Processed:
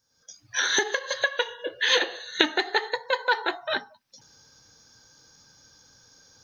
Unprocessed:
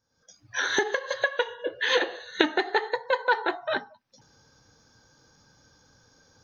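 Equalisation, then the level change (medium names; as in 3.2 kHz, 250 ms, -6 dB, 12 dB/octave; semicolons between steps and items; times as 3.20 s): treble shelf 2.5 kHz +12 dB; -2.5 dB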